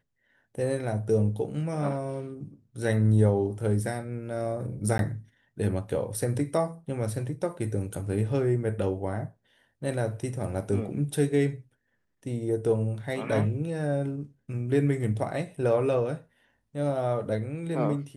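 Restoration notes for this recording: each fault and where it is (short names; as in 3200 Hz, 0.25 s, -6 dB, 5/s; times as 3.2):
4.98–4.99 gap 12 ms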